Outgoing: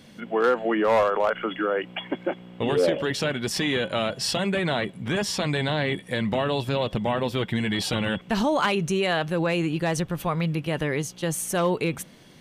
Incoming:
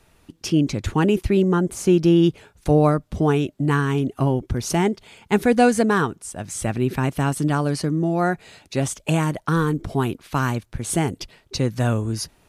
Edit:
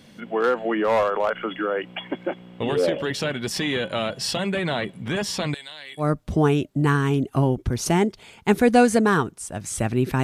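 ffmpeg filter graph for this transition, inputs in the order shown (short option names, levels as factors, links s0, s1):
-filter_complex "[0:a]asettb=1/sr,asplit=3[s0][s1][s2];[s0]atrim=end=5.544[s3];[s1]atrim=start=5.54:end=6.11,asetpts=PTS-STARTPTS,afade=t=in:d=0.004:c=qsin,afade=t=out:st=0.566:d=0.004:c=qsin,aderivative[s4];[s2]atrim=start=6.106[s5];[s3][s4]acrossfade=d=0.004:c1=hsin:c2=qsin[s6];[s6][s5]acrossfade=d=0.004:c1=qsin:c2=hsin,apad=whole_dur=10.23,atrim=end=10.23,atrim=end=6.11,asetpts=PTS-STARTPTS[s7];[1:a]atrim=start=2.81:end=7.07,asetpts=PTS-STARTPTS[s8];[s7][s8]acrossfade=d=0.14:c1=tri:c2=tri"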